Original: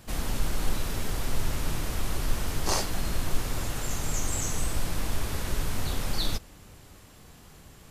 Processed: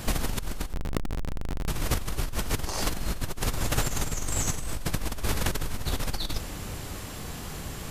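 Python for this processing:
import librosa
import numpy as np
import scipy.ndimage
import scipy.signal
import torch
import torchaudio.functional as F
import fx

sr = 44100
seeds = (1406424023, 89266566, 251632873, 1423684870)

y = fx.schmitt(x, sr, flips_db=-27.0, at=(0.73, 1.68))
y = fx.over_compress(y, sr, threshold_db=-34.0, ratio=-1.0)
y = y * 10.0 ** (6.0 / 20.0)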